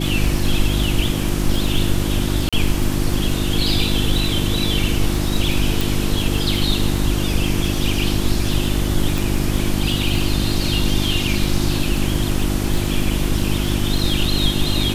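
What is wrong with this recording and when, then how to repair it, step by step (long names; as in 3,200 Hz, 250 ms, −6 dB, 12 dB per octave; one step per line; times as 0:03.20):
surface crackle 33 per second −23 dBFS
mains hum 50 Hz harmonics 7 −22 dBFS
0:02.49–0:02.53: drop-out 36 ms
0:05.81: click
0:09.18: click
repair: click removal
hum removal 50 Hz, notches 7
repair the gap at 0:02.49, 36 ms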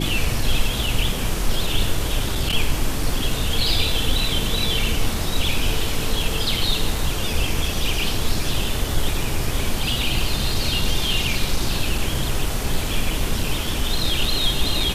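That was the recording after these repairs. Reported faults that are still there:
0:09.18: click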